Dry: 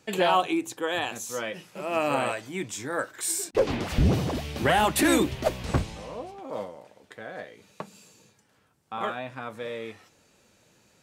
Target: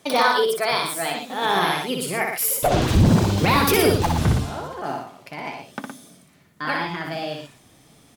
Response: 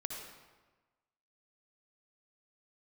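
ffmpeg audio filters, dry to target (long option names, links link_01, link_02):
-af "asubboost=boost=2:cutoff=230,alimiter=limit=-15.5dB:level=0:latency=1:release=31,aecho=1:1:81.63|157.4:0.631|0.447,asetrate=59535,aresample=44100,volume=5.5dB"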